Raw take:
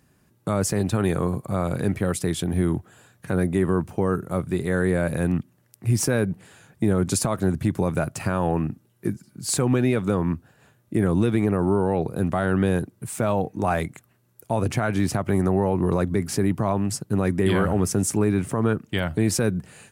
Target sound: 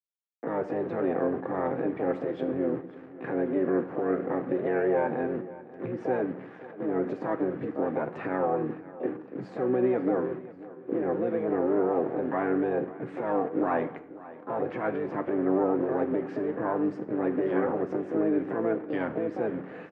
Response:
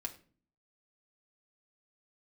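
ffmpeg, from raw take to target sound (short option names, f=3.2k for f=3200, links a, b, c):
-filter_complex "[0:a]equalizer=f=1.4k:t=o:w=2.2:g=-9.5,acompressor=threshold=-27dB:ratio=16,alimiter=level_in=4dB:limit=-24dB:level=0:latency=1:release=299,volume=-4dB,aeval=exprs='val(0)*gte(abs(val(0)),0.00316)':c=same,asplit=2[a][b];[b]asetrate=66075,aresample=44100,atempo=0.66742,volume=-5dB[c];[a][c]amix=inputs=2:normalize=0,highpass=300,equalizer=f=310:t=q:w=4:g=8,equalizer=f=480:t=q:w=4:g=8,equalizer=f=770:t=q:w=4:g=5,equalizer=f=1.2k:t=q:w=4:g=4,equalizer=f=1.7k:t=q:w=4:g=7,lowpass=f=2.1k:w=0.5412,lowpass=f=2.1k:w=1.3066,aecho=1:1:539|1078|1617|2156:0.126|0.0567|0.0255|0.0115,asplit=2[d][e];[1:a]atrim=start_sample=2205,asetrate=24255,aresample=44100,highshelf=f=6k:g=11.5[f];[e][f]afir=irnorm=-1:irlink=0,volume=-1.5dB[g];[d][g]amix=inputs=2:normalize=0,volume=2dB"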